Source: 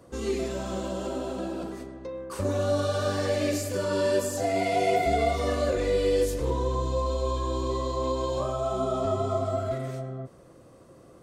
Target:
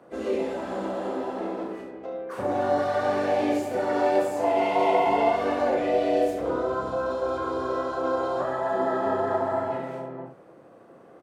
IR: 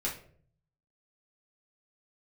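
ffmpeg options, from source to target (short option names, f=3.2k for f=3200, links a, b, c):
-filter_complex "[0:a]acrossover=split=160 2700:gain=0.0891 1 0.178[a][b][c];[a][b][c]amix=inputs=3:normalize=0,asplit=4[d][e][f][g];[e]asetrate=55563,aresample=44100,atempo=0.793701,volume=-8dB[h];[f]asetrate=58866,aresample=44100,atempo=0.749154,volume=-11dB[i];[g]asetrate=66075,aresample=44100,atempo=0.66742,volume=-12dB[j];[d][h][i][j]amix=inputs=4:normalize=0,aecho=1:1:34|71:0.531|0.447"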